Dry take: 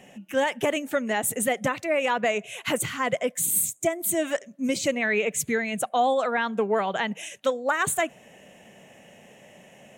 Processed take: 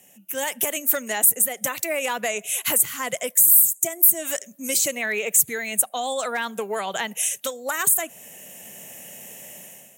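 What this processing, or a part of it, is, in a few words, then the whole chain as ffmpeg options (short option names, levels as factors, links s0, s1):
FM broadcast chain: -filter_complex "[0:a]highpass=46,dynaudnorm=f=170:g=5:m=4.47,acrossover=split=380|1800[s0][s1][s2];[s0]acompressor=threshold=0.0398:ratio=4[s3];[s1]acompressor=threshold=0.2:ratio=4[s4];[s2]acompressor=threshold=0.0794:ratio=4[s5];[s3][s4][s5]amix=inputs=3:normalize=0,aemphasis=mode=production:type=50fm,alimiter=limit=0.596:level=0:latency=1:release=362,asoftclip=type=hard:threshold=0.473,lowpass=f=15000:w=0.5412,lowpass=f=15000:w=1.3066,aemphasis=mode=production:type=50fm,volume=0.299"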